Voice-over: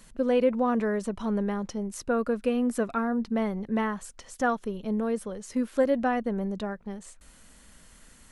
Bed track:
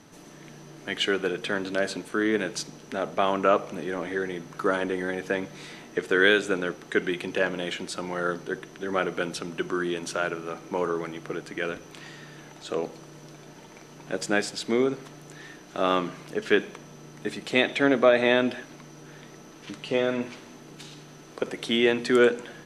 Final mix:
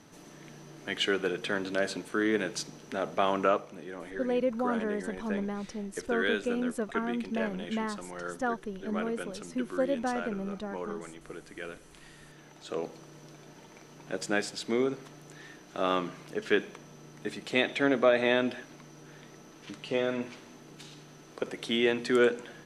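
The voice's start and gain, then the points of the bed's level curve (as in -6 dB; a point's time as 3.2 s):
4.00 s, -5.5 dB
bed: 3.44 s -3 dB
3.69 s -10.5 dB
12.01 s -10.5 dB
12.87 s -4.5 dB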